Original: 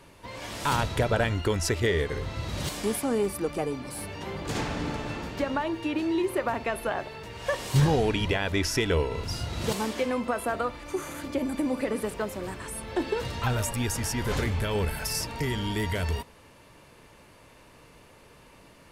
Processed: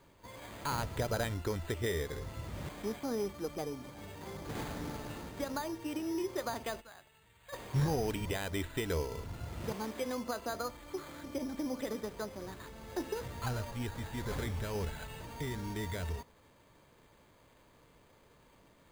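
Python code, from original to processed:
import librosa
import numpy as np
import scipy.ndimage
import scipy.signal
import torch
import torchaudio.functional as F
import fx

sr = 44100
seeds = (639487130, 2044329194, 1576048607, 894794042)

y = fx.tone_stack(x, sr, knobs='5-5-5', at=(6.8, 7.52), fade=0.02)
y = np.repeat(scipy.signal.resample_poly(y, 1, 8), 8)[:len(y)]
y = y * librosa.db_to_amplitude(-9.0)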